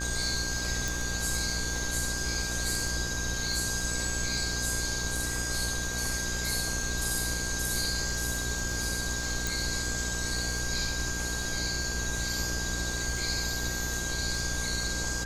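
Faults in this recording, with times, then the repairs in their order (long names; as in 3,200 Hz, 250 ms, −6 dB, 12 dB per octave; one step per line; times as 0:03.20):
mains buzz 60 Hz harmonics 24 −36 dBFS
surface crackle 49 per second −36 dBFS
whistle 1,600 Hz −36 dBFS
0:00.88: click
0:09.47: click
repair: click removal
hum removal 60 Hz, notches 24
notch filter 1,600 Hz, Q 30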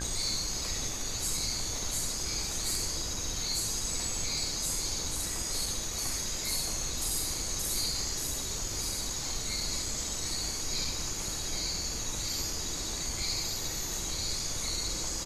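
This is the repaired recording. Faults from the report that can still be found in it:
0:00.88: click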